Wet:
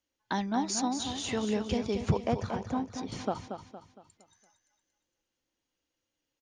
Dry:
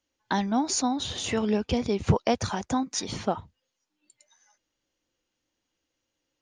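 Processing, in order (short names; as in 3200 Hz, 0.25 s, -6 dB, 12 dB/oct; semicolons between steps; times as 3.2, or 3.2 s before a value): 2.11–3.12 LPF 1400 Hz 6 dB/oct; feedback echo 0.231 s, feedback 41%, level -8 dB; gain -5 dB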